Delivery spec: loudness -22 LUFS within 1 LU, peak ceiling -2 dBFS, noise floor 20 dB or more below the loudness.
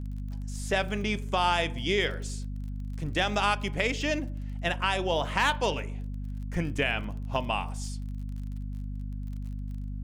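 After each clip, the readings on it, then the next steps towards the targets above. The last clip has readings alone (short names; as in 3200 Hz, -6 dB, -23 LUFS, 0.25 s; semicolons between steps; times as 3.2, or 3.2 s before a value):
ticks 35/s; hum 50 Hz; harmonics up to 250 Hz; hum level -32 dBFS; loudness -30.5 LUFS; peak -11.5 dBFS; loudness target -22.0 LUFS
-> de-click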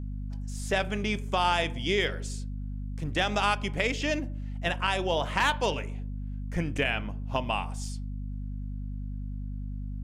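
ticks 0.20/s; hum 50 Hz; harmonics up to 250 Hz; hum level -32 dBFS
-> notches 50/100/150/200/250 Hz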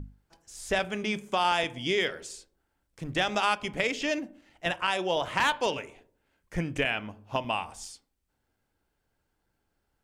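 hum none; loudness -29.0 LUFS; peak -12.0 dBFS; loudness target -22.0 LUFS
-> gain +7 dB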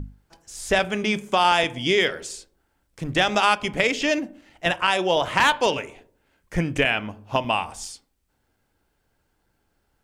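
loudness -22.0 LUFS; peak -5.0 dBFS; noise floor -71 dBFS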